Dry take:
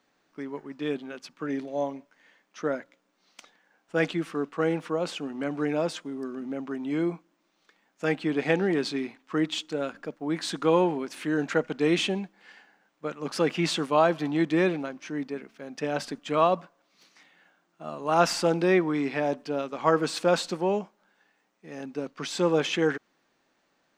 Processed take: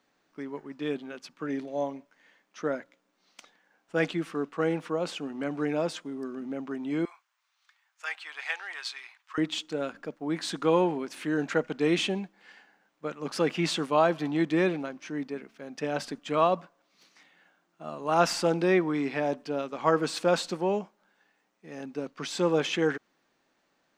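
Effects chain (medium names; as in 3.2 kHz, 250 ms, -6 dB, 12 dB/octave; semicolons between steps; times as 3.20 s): 7.05–9.38 s: high-pass 1 kHz 24 dB/octave; trim -1.5 dB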